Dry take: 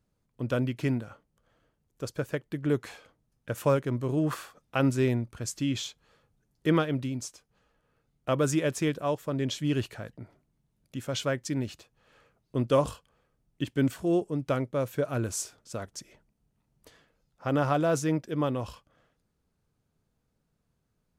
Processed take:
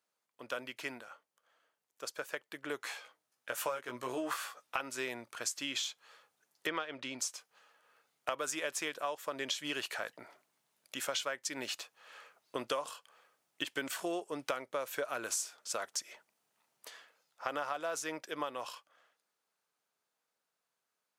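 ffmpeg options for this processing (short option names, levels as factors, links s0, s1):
-filter_complex "[0:a]asettb=1/sr,asplit=3[s0][s1][s2];[s0]atrim=end=2.814[s3];[s1]atrim=start=2.81:end=4.81,asetpts=PTS-STARTPTS,afade=t=in:d=0.004:c=qsin,afade=t=out:st=1.996:d=0.004:c=qsin,asplit=2[s4][s5];[s5]adelay=16,volume=0.668[s6];[s4][s6]amix=inputs=2:normalize=0,atrim=end_sample=88200[s7];[s2]atrim=start=4.806[s8];[s3][s7]acrossfade=d=0.004:c1=hsin:c2=qsin[s9];[s9][s8]acrossfade=d=0.004:c1=qsin:c2=hsin,asettb=1/sr,asplit=3[s10][s11][s12];[s10]atrim=end=6.674[s13];[s11]atrim=start=6.67:end=7.19,asetpts=PTS-STARTPTS,afade=t=in:d=0.004:c=qsin,afade=t=out:st=0.516:d=0.004:c=qsin,lowpass=5200[s14];[s12]atrim=start=7.186[s15];[s13][s14]acrossfade=d=0.004:c1=hsin:c2=qsin[s16];[s16][s15]acrossfade=d=0.004:c1=qsin:c2=hsin,dynaudnorm=f=250:g=31:m=3.76,highpass=820,acompressor=threshold=0.0224:ratio=8"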